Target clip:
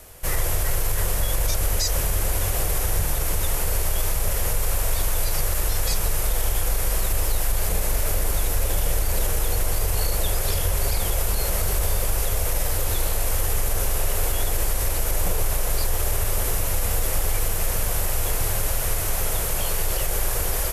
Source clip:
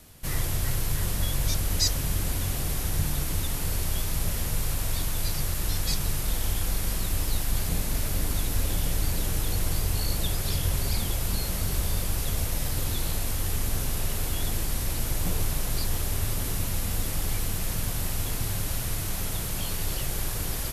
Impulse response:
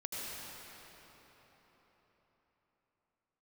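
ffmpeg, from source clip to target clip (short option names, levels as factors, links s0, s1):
-af "equalizer=f=125:t=o:w=1:g=-8,equalizer=f=250:t=o:w=1:g=-11,equalizer=f=500:t=o:w=1:g=6,equalizer=f=4000:t=o:w=1:g=-6,alimiter=limit=0.0944:level=0:latency=1:release=45,volume=2.51"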